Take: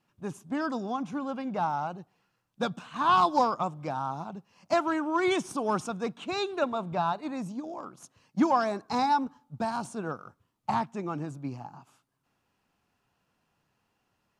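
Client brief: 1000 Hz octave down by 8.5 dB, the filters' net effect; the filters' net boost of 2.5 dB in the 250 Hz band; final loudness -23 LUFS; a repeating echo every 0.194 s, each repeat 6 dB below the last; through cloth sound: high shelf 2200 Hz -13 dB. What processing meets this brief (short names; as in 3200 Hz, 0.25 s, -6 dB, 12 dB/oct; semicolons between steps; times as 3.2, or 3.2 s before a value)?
bell 250 Hz +4 dB; bell 1000 Hz -8.5 dB; high shelf 2200 Hz -13 dB; feedback echo 0.194 s, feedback 50%, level -6 dB; gain +8.5 dB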